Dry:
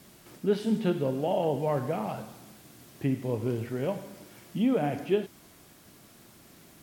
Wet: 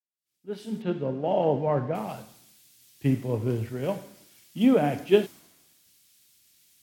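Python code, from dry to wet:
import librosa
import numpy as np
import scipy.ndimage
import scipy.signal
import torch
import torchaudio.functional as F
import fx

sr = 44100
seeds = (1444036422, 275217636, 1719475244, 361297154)

y = fx.fade_in_head(x, sr, length_s=1.29)
y = fx.air_absorb(y, sr, metres=150.0, at=(0.82, 1.95))
y = fx.band_widen(y, sr, depth_pct=100)
y = y * librosa.db_to_amplitude(2.0)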